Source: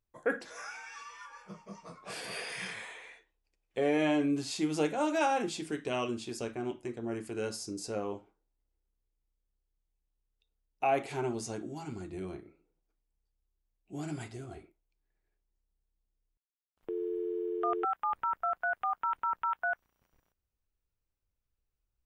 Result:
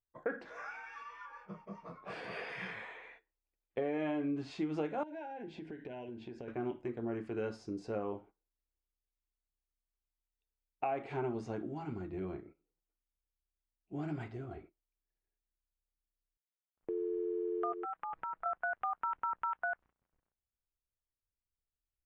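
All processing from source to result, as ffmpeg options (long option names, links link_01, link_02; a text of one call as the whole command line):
ffmpeg -i in.wav -filter_complex "[0:a]asettb=1/sr,asplit=3[link_01][link_02][link_03];[link_01]atrim=end=5.034[link_04];[link_02]atrim=start=5.03:end=6.48,asetpts=PTS-STARTPTS,afade=type=in:duration=0.004:curve=qsin,afade=type=out:start_time=1.446:duration=0.004:curve=qsin,asuperstop=centerf=1200:order=12:qfactor=3,aemphasis=mode=reproduction:type=50fm,acompressor=threshold=-41dB:ratio=10:attack=3.2:release=140:knee=1:detection=peak[link_05];[link_03]atrim=start=6.476[link_06];[link_04][link_05]acrossfade=duration=0.004:curve1=hsin:curve2=qsin[link_07];[link_07][link_06]acrossfade=duration=0.004:curve1=qsin:curve2=hsin,asettb=1/sr,asplit=3[link_08][link_09][link_10];[link_08]atrim=end=17.724[link_11];[link_09]atrim=start=17.72:end=18.46,asetpts=PTS-STARTPTS,afade=type=in:duration=0.004:curve=qsin,afade=type=out:start_time=0.736:duration=0.004:curve=qsin,aecho=1:1:6.2:0.52,atrim=end_sample=32634,acompressor=threshold=-39dB:ratio=3:attack=3.2:release=140:knee=1:detection=peak[link_12];[link_10]atrim=start=18.456[link_13];[link_11][link_12]acrossfade=duration=0.004:curve1=hsin:curve2=qsin[link_14];[link_14][link_13]acrossfade=duration=0.004:curve1=qsin:curve2=hsin,agate=range=-11dB:threshold=-55dB:ratio=16:detection=peak,lowpass=2100,acompressor=threshold=-32dB:ratio=6" out.wav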